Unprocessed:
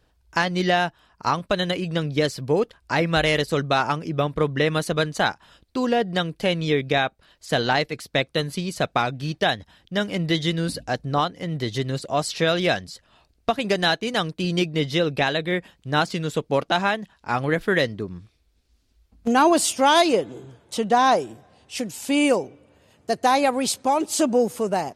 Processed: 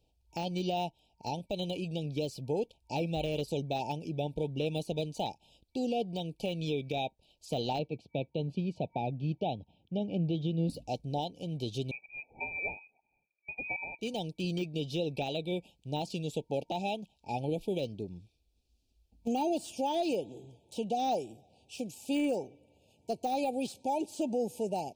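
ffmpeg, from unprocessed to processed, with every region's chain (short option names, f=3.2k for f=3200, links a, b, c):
-filter_complex "[0:a]asettb=1/sr,asplit=3[a][b][c];[a]atrim=end=7.794[d];[b]atrim=start=7.79:end=10.7,asetpts=PTS-STARTPTS,afade=t=in:d=0.004:c=qsin,afade=t=out:st=2.906:d=0.004:c=qsin,highpass=110,lowpass=2.1k,lowshelf=f=220:g=8.5[e];[c]atrim=start=10.696[f];[d][e]acrossfade=d=0.004:c1=hsin:c2=qsin[g];[g][f]acrossfade=d=0.004:c1=qsin:c2=hsin,asettb=1/sr,asplit=3[h][i][j];[h]atrim=end=11.914[k];[i]atrim=start=11.91:end=13.99,asetpts=PTS-STARTPTS,afade=t=in:d=0.004:c=qsin,afade=t=out:st=2.076:d=0.004:c=qsin,highpass=f=220:w=0.5412,highpass=f=220:w=1.3066,lowpass=f=2.3k:t=q:w=0.5098,lowpass=f=2.3k:t=q:w=0.6013,lowpass=f=2.3k:t=q:w=0.9,lowpass=f=2.3k:t=q:w=2.563,afreqshift=-2700[l];[j]atrim=start=13.986[m];[k][l]acrossfade=d=0.004:c1=hsin:c2=qsin[n];[n][m]acrossfade=d=0.004:c1=qsin:c2=hsin,afftfilt=real='re*(1-between(b*sr/4096,920,2300))':imag='im*(1-between(b*sr/4096,920,2300))':win_size=4096:overlap=0.75,deesser=0.75,alimiter=limit=-14dB:level=0:latency=1:release=105,volume=-9dB"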